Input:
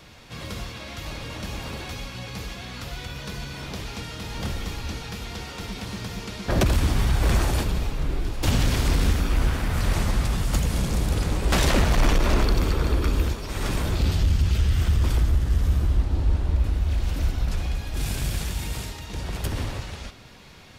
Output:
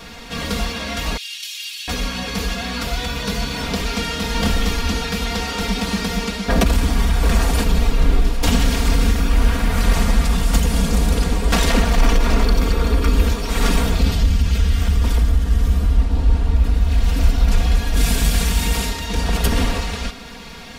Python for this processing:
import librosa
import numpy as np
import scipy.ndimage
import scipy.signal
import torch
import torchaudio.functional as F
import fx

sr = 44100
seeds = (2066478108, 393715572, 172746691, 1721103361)

y = fx.cheby1_highpass(x, sr, hz=2900.0, order=3, at=(1.17, 1.88))
y = y + 0.9 * np.pad(y, (int(4.3 * sr / 1000.0), 0))[:len(y)]
y = fx.rider(y, sr, range_db=4, speed_s=0.5)
y = F.gain(torch.from_numpy(y), 5.0).numpy()